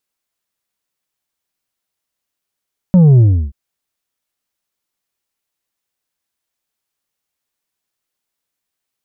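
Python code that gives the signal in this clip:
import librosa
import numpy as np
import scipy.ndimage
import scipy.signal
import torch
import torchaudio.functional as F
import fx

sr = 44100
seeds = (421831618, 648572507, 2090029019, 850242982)

y = fx.sub_drop(sr, level_db=-5.0, start_hz=190.0, length_s=0.58, drive_db=5.0, fade_s=0.33, end_hz=65.0)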